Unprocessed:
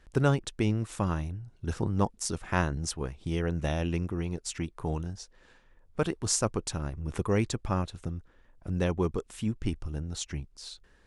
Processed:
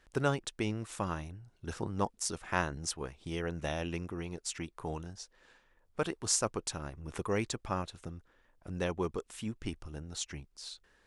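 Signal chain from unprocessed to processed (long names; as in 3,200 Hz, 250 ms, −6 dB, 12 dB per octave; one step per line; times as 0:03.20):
low-shelf EQ 280 Hz −9.5 dB
level −1.5 dB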